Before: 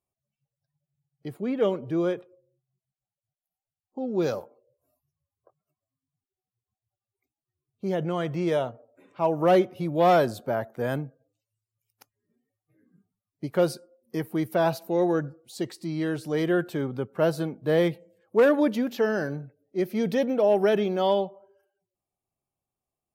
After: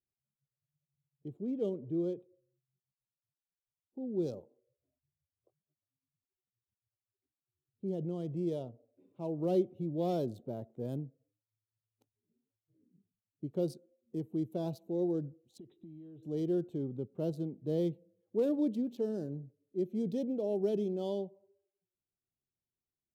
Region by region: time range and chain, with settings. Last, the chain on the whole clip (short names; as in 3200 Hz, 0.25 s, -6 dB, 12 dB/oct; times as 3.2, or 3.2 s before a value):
15.58–16.23 brick-wall FIR low-pass 4000 Hz + notch 510 Hz, Q 9.9 + compressor 20:1, threshold -39 dBFS
whole clip: Wiener smoothing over 9 samples; EQ curve 370 Hz 0 dB, 1700 Hz -27 dB, 3800 Hz -5 dB; gain -7 dB